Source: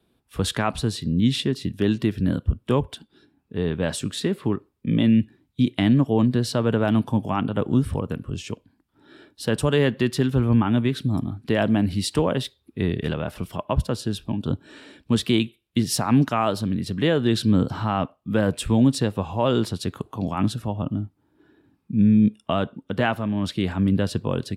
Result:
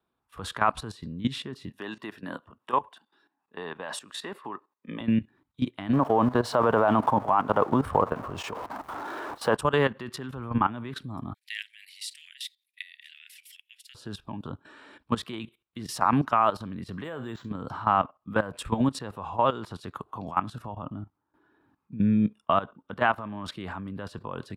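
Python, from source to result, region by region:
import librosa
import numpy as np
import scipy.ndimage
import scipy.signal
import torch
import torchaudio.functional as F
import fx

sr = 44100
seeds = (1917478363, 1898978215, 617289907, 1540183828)

y = fx.chain(x, sr, fx.highpass(hz=360.0, slope=12),
    fx.comb(ms=1.1, depth=0.31), at=(1.7, 5.01))
y = fx.chain(y, sr, fx.zero_step(step_db=-36.5),
    fx.peak_eq(hz=690.0, db=12.0, octaves=2.1), at=(5.93, 9.56))
y = fx.chain(y, sr, fx.steep_highpass(hz=1900.0, slope=72),
    fx.high_shelf(hz=3900.0, db=9.0), at=(11.34, 13.95))
y = fx.chain(y, sr, fx.comb_fb(f0_hz=130.0, decay_s=0.3, harmonics='all', damping=0.0, mix_pct=50),
    fx.resample_linear(factor=4), at=(17.04, 17.5))
y = fx.peak_eq(y, sr, hz=1100.0, db=15.0, octaves=1.5)
y = fx.level_steps(y, sr, step_db=15)
y = y * 10.0 ** (-6.0 / 20.0)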